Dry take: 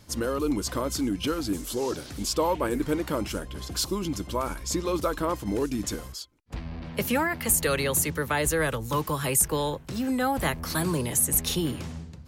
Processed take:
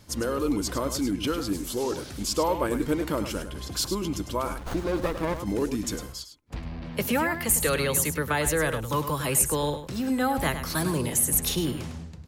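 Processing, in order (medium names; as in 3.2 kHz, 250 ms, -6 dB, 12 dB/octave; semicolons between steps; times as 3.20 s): delay 103 ms -10 dB; 4.58–5.40 s: sliding maximum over 17 samples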